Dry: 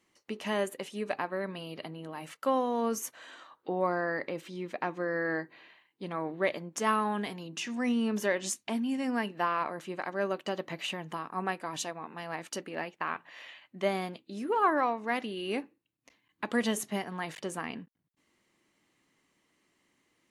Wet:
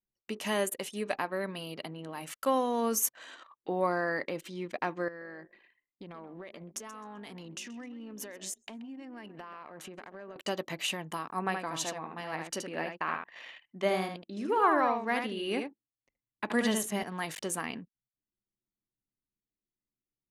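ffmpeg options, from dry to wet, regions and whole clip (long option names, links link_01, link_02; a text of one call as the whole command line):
ffmpeg -i in.wav -filter_complex "[0:a]asettb=1/sr,asplit=3[link_01][link_02][link_03];[link_01]atrim=end=5.084[link_04];[link_02]atrim=start=5.08:end=10.36,asetpts=PTS-STARTPTS,afade=type=in:duration=0.004:curve=qsin,afade=type=out:start_time=5.276:duration=0.004:curve=qsin,acompressor=threshold=-41dB:ratio=20:attack=3.2:release=140:knee=1:detection=peak,asplit=5[link_05][link_06][link_07][link_08][link_09];[link_06]adelay=130,afreqshift=43,volume=-13dB[link_10];[link_07]adelay=260,afreqshift=86,volume=-21.6dB[link_11];[link_08]adelay=390,afreqshift=129,volume=-30.3dB[link_12];[link_09]adelay=520,afreqshift=172,volume=-38.9dB[link_13];[link_05][link_10][link_11][link_12][link_13]amix=inputs=5:normalize=0,atrim=end_sample=232848[link_14];[link_03]atrim=start=10.356[link_15];[link_04][link_14]acrossfade=duration=0.004:curve1=hsin:curve2=qsin[link_16];[link_16][link_15]acrossfade=duration=0.004:curve1=qsin:curve2=hsin,asettb=1/sr,asplit=3[link_17][link_18][link_19];[link_17]atrim=end=11.394[link_20];[link_18]atrim=start=11.39:end=17.03,asetpts=PTS-STARTPTS,afade=type=in:duration=0.004:curve=qsin,afade=type=out:start_time=5.636:duration=0.004:curve=qsin,lowpass=frequency=3600:poles=1,aecho=1:1:74:0.531,atrim=end_sample=248724[link_21];[link_19]atrim=start=17.026[link_22];[link_20][link_21]acrossfade=duration=0.004:curve1=hsin:curve2=qsin[link_23];[link_23][link_22]acrossfade=duration=0.004:curve1=qsin:curve2=hsin,anlmdn=0.00398,aemphasis=mode=production:type=50kf" out.wav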